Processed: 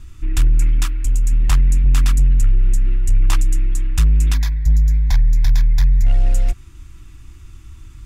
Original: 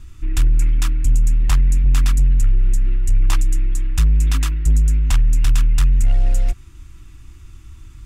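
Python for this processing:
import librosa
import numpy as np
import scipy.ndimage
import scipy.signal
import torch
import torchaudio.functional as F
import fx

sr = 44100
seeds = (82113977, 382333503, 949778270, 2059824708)

y = fx.peak_eq(x, sr, hz=120.0, db=fx.line((0.84, -12.5), (1.31, -6.0)), octaves=2.5, at=(0.84, 1.31), fade=0.02)
y = fx.fixed_phaser(y, sr, hz=1900.0, stages=8, at=(4.34, 6.06))
y = y * librosa.db_to_amplitude(1.0)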